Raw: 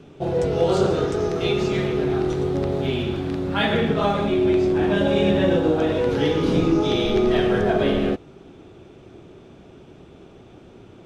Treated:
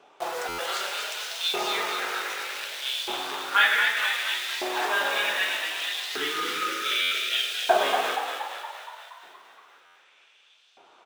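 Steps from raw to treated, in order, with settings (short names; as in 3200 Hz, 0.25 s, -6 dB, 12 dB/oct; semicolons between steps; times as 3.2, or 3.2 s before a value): 4.44–5.01 HPF 300 Hz 6 dB/oct; 5.39–7.31 spectral delete 460–1200 Hz; in parallel at -4 dB: bit-crush 5-bit; on the sum: LFO high-pass saw up 0.65 Hz 770–4300 Hz; on a send: frequency-shifting echo 0.235 s, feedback 61%, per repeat +52 Hz, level -6 dB; on the sum: stuck buffer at 0.48/7.01/9.85, samples 512, times 8; gain -4 dB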